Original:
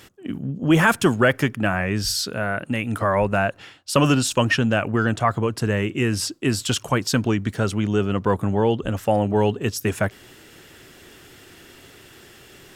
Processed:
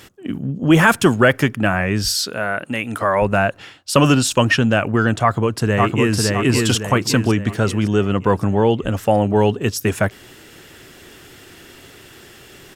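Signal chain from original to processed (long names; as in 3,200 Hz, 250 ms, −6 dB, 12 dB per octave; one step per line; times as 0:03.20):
0:02.08–0:03.22: low-shelf EQ 190 Hz −11 dB
0:05.21–0:06.19: delay throw 560 ms, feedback 45%, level −2 dB
level +4 dB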